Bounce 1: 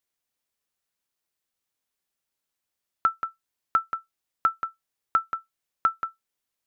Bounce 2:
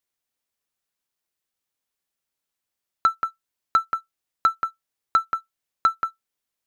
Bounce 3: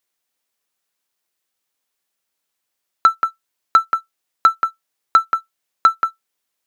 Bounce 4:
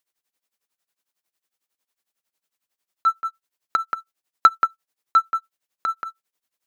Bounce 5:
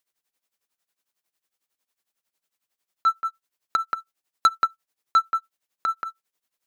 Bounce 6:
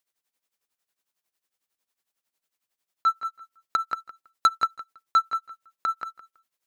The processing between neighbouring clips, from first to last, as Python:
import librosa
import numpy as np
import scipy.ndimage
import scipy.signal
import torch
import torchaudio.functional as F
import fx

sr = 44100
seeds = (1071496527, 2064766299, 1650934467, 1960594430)

y1 = fx.leveller(x, sr, passes=1)
y1 = y1 * librosa.db_to_amplitude(1.5)
y2 = fx.low_shelf(y1, sr, hz=150.0, db=-11.5)
y2 = y2 * librosa.db_to_amplitude(7.0)
y3 = y2 * (1.0 - 0.88 / 2.0 + 0.88 / 2.0 * np.cos(2.0 * np.pi * 11.0 * (np.arange(len(y2)) / sr)))
y4 = 10.0 ** (-10.5 / 20.0) * np.tanh(y3 / 10.0 ** (-10.5 / 20.0))
y5 = fx.echo_feedback(y4, sr, ms=163, feedback_pct=17, wet_db=-15.5)
y5 = y5 * librosa.db_to_amplitude(-1.5)